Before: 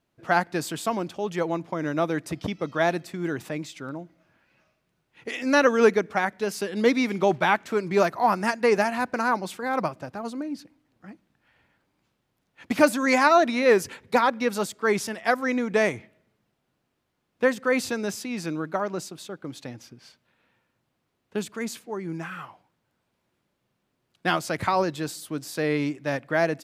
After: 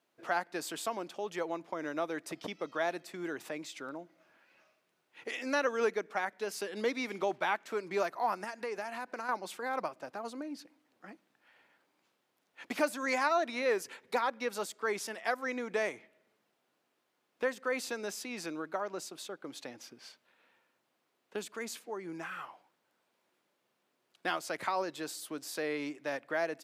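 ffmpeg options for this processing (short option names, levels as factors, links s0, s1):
-filter_complex "[0:a]asettb=1/sr,asplit=3[s0][s1][s2];[s0]atrim=end=8.444[s3];[s1]atrim=start=8.44:end=9.29,asetpts=PTS-STARTPTS,afade=t=in:d=0.004:c=qsin,afade=t=out:st=0.846:d=0.004:c=qsin,acompressor=threshold=0.0282:ratio=2.5:attack=3.2:release=140:knee=1:detection=peak[s4];[s2]atrim=start=9.286[s5];[s3][s4]acrossfade=d=0.004:c1=hsin:c2=qsin[s6];[s6][s5]acrossfade=d=0.004:c1=qsin:c2=hsin,highpass=350,acompressor=threshold=0.00501:ratio=1.5"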